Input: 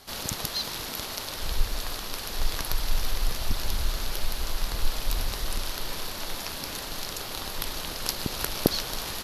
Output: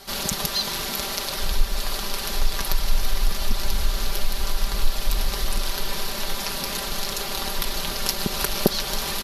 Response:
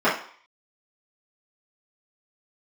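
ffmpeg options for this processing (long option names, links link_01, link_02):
-filter_complex "[0:a]aecho=1:1:5.1:0.7,asplit=2[link_01][link_02];[link_02]acompressor=threshold=-26dB:ratio=6,volume=0dB[link_03];[link_01][link_03]amix=inputs=2:normalize=0,volume=-1dB"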